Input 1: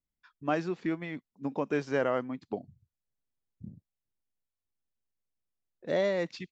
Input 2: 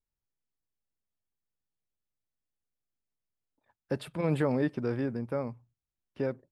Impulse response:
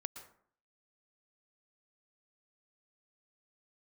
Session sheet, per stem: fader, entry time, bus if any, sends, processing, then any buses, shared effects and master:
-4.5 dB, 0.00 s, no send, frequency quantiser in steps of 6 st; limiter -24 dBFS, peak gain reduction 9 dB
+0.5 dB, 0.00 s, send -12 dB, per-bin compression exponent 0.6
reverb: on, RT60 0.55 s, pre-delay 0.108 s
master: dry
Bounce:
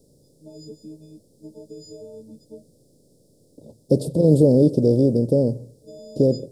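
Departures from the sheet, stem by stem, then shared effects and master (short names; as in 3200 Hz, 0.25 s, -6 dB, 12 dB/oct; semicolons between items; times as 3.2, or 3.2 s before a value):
stem 2 +0.5 dB -> +11.0 dB; master: extra elliptic band-stop 540–5100 Hz, stop band 70 dB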